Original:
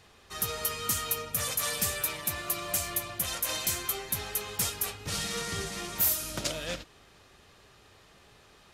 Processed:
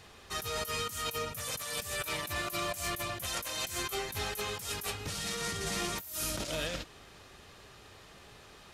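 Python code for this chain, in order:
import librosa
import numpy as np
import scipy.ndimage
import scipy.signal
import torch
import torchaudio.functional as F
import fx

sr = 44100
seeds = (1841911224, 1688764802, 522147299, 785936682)

y = fx.over_compress(x, sr, threshold_db=-37.0, ratio=-1.0)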